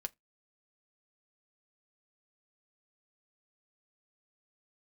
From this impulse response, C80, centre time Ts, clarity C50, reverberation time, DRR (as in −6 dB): 39.5 dB, 2 ms, 31.0 dB, non-exponential decay, 7.0 dB